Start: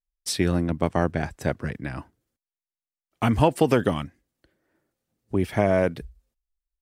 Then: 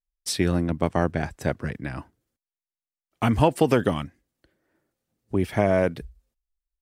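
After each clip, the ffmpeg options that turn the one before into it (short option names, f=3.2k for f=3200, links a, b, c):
-af anull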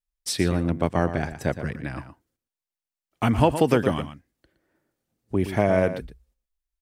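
-filter_complex "[0:a]asplit=2[a][b];[b]adelay=116.6,volume=-11dB,highshelf=f=4k:g=-2.62[c];[a][c]amix=inputs=2:normalize=0"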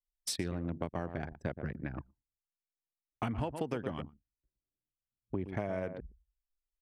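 -af "anlmdn=39.8,acompressor=threshold=-27dB:ratio=6,volume=-5dB"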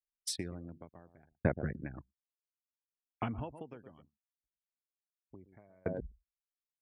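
-af "afftdn=nr=23:nf=-49,aeval=exprs='val(0)*pow(10,-38*if(lt(mod(0.68*n/s,1),2*abs(0.68)/1000),1-mod(0.68*n/s,1)/(2*abs(0.68)/1000),(mod(0.68*n/s,1)-2*abs(0.68)/1000)/(1-2*abs(0.68)/1000))/20)':c=same,volume=7.5dB"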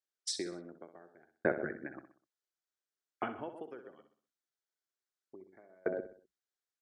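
-filter_complex "[0:a]highpass=350,equalizer=f=370:t=q:w=4:g=7,equalizer=f=980:t=q:w=4:g=-5,equalizer=f=1.5k:t=q:w=4:g=5,equalizer=f=2.6k:t=q:w=4:g=-8,lowpass=f=8.1k:w=0.5412,lowpass=f=8.1k:w=1.3066,asplit=2[a][b];[b]aecho=0:1:63|126|189|252:0.282|0.121|0.0521|0.0224[c];[a][c]amix=inputs=2:normalize=0,volume=2dB"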